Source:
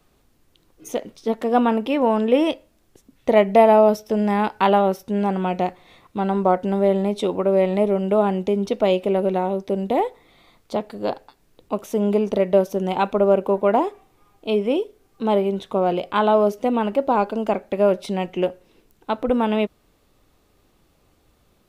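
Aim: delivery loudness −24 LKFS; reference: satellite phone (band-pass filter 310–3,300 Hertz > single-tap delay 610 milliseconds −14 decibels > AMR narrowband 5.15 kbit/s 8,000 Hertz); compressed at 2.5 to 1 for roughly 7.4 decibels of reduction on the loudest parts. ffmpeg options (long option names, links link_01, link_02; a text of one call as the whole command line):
ffmpeg -i in.wav -af "acompressor=threshold=-20dB:ratio=2.5,highpass=310,lowpass=3300,aecho=1:1:610:0.2,volume=3dB" -ar 8000 -c:a libopencore_amrnb -b:a 5150 out.amr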